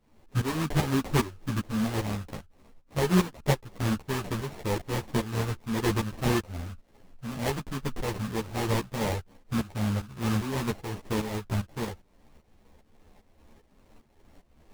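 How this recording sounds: a buzz of ramps at a fixed pitch in blocks of 16 samples; tremolo saw up 2.5 Hz, depth 80%; aliases and images of a low sample rate 1.4 kHz, jitter 20%; a shimmering, thickened sound

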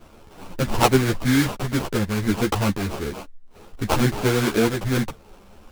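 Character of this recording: aliases and images of a low sample rate 1.9 kHz, jitter 20%; a shimmering, thickened sound

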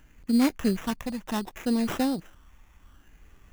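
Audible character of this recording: phasing stages 6, 0.66 Hz, lowest notch 410–1400 Hz; aliases and images of a low sample rate 4.5 kHz, jitter 0%; AAC

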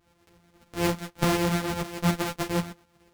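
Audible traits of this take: a buzz of ramps at a fixed pitch in blocks of 256 samples; tremolo saw up 8.1 Hz, depth 55%; a shimmering, thickened sound

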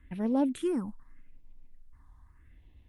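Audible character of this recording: phasing stages 4, 0.82 Hz, lowest notch 420–1400 Hz; Opus

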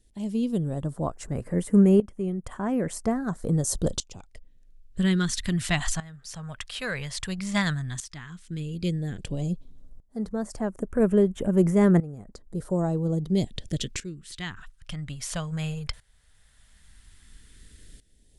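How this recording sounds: phasing stages 2, 0.11 Hz, lowest notch 320–3900 Hz; tremolo saw up 0.5 Hz, depth 85%

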